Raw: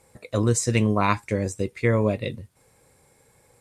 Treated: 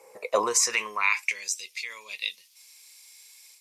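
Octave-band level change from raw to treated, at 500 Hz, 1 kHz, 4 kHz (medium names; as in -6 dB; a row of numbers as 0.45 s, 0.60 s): -7.0 dB, -3.0 dB, +6.0 dB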